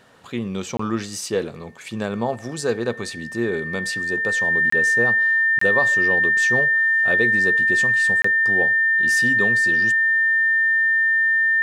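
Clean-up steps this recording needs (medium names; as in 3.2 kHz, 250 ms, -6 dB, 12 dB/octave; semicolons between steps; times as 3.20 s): band-stop 1.8 kHz, Q 30; interpolate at 0.77/4.70/5.59/8.22 s, 24 ms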